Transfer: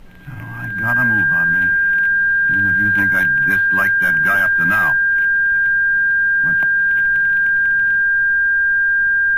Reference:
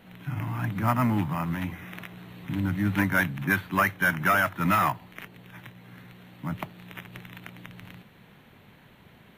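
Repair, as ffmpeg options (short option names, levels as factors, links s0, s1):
-af "bandreject=f=1600:w=30,agate=range=0.0891:threshold=0.447"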